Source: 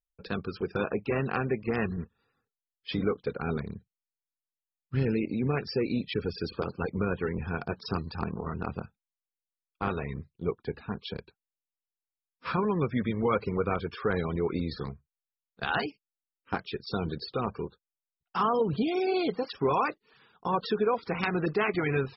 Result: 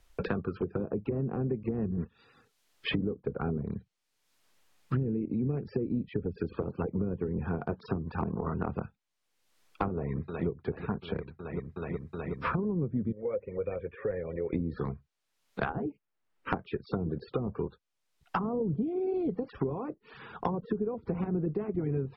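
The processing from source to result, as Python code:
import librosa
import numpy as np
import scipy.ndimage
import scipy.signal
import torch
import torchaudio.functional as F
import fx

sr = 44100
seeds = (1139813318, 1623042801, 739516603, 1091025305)

y = fx.echo_throw(x, sr, start_s=9.91, length_s=0.57, ms=370, feedback_pct=80, wet_db=-13.0)
y = fx.formant_cascade(y, sr, vowel='e', at=(13.12, 14.53))
y = fx.env_lowpass_down(y, sr, base_hz=370.0, full_db=-26.0)
y = fx.lowpass(y, sr, hz=3500.0, slope=6)
y = fx.band_squash(y, sr, depth_pct=100)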